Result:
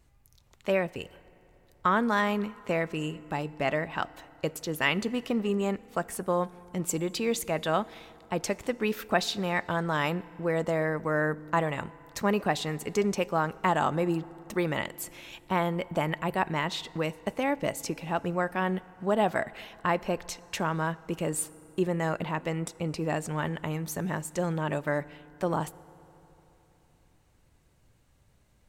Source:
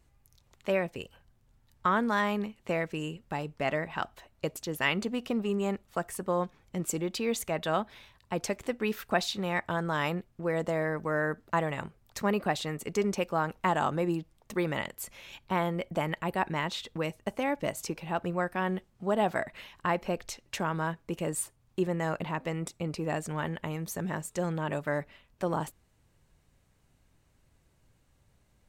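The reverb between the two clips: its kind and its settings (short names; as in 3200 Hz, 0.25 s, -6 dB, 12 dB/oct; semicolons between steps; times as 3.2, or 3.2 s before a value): FDN reverb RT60 3.6 s, high-frequency decay 0.55×, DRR 19.5 dB; gain +2 dB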